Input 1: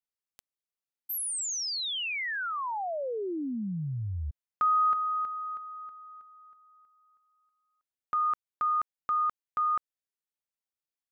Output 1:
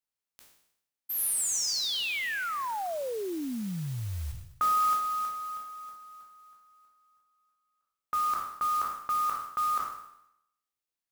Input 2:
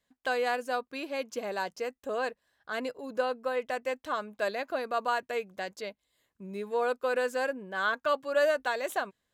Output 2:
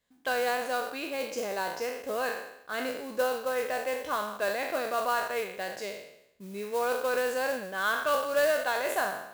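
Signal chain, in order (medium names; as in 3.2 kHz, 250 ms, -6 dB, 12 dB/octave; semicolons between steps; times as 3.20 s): spectral sustain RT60 0.79 s; modulation noise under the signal 16 dB; trim -1 dB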